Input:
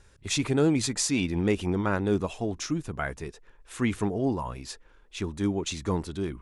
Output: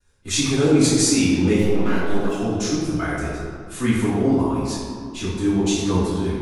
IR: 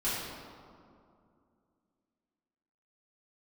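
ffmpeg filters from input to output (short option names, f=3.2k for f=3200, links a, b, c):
-filter_complex "[0:a]agate=range=-33dB:threshold=-48dB:ratio=3:detection=peak,highshelf=f=6.5k:g=10,asettb=1/sr,asplit=3[a][b][c];[a]atrim=end=1.584[d];[b]atrim=start=1.58:end=2.32,asetpts=PTS-STARTPTS,afade=t=in:d=0.004:c=qsin,afade=t=out:st=0.736:d=0.004:c=qsin,aeval=exprs='max(val(0),0)':c=same[e];[c]atrim=start=2.316[f];[d][e]acrossfade=d=0.004:c1=hsin:c2=qsin[g];[g][f]acrossfade=d=0.004:c1=qsin:c2=hsin[h];[1:a]atrim=start_sample=2205,asetrate=48510,aresample=44100[i];[h][i]afir=irnorm=-1:irlink=0,volume=-1dB"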